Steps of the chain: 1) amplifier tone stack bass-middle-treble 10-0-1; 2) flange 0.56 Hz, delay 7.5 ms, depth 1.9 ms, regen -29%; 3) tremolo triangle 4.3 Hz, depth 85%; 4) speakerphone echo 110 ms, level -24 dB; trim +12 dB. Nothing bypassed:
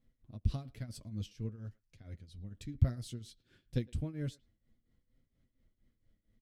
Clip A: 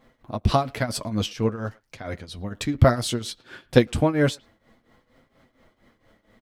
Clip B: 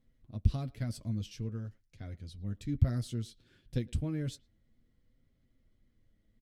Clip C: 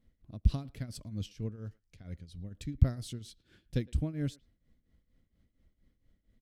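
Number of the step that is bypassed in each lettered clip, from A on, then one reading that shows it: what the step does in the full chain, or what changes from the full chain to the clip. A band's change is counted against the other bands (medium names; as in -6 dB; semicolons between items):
1, 125 Hz band -12.5 dB; 3, momentary loudness spread change -2 LU; 2, loudness change +3.5 LU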